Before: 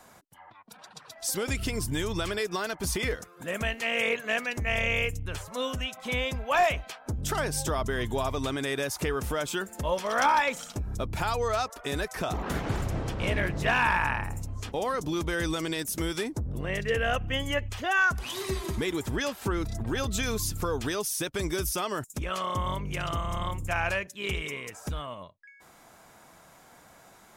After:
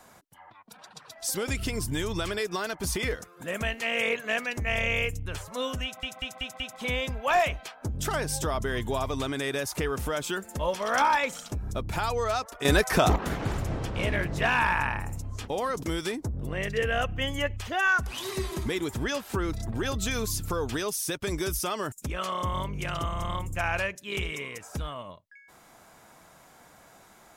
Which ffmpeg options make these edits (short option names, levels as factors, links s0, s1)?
-filter_complex "[0:a]asplit=8[s0][s1][s2][s3][s4][s5][s6][s7];[s0]atrim=end=6.032[s8];[s1]atrim=start=5.838:end=6.032[s9];[s2]atrim=start=5.838:end=6.032[s10];[s3]atrim=start=5.838:end=6.032[s11];[s4]atrim=start=5.838:end=11.892[s12];[s5]atrim=start=11.888:end=12.402,asetpts=PTS-STARTPTS,volume=2.99[s13];[s6]atrim=start=12.398:end=15.072[s14];[s7]atrim=start=15.948[s15];[s8][s9]acrossfade=d=0.004:c1=hsin:c2=hsin[s16];[s16][s10]acrossfade=d=0.004:c1=hsin:c2=hsin[s17];[s17][s11]acrossfade=d=0.004:c1=hsin:c2=hsin[s18];[s18][s12]acrossfade=d=0.004:c1=hsin:c2=hsin[s19];[s19][s13]acrossfade=d=0.004:c1=hsin:c2=hsin[s20];[s20][s14]acrossfade=d=0.004:c1=hsin:c2=hsin[s21];[s21][s15]acrossfade=d=0.004:c1=hsin:c2=hsin"